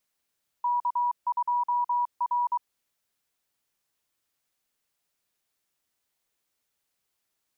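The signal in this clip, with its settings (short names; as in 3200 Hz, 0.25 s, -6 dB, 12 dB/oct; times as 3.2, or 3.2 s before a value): Morse "K2R" 23 wpm 970 Hz -22.5 dBFS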